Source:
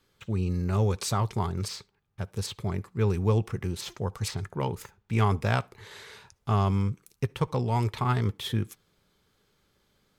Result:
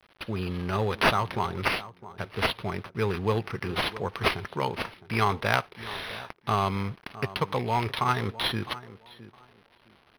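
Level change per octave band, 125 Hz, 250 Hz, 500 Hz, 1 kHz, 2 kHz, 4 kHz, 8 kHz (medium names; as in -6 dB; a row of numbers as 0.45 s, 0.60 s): -6.0 dB, -1.5 dB, +2.0 dB, +5.0 dB, +10.0 dB, +7.0 dB, -6.0 dB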